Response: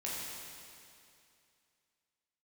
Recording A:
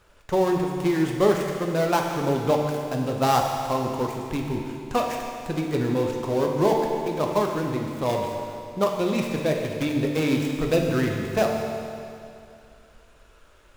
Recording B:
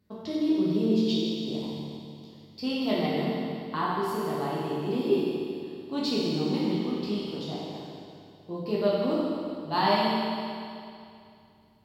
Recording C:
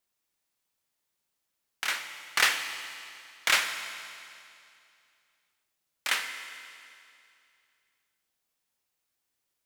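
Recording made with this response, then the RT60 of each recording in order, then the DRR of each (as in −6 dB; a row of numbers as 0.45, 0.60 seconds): B; 2.5, 2.5, 2.5 seconds; 0.5, −7.0, 6.0 decibels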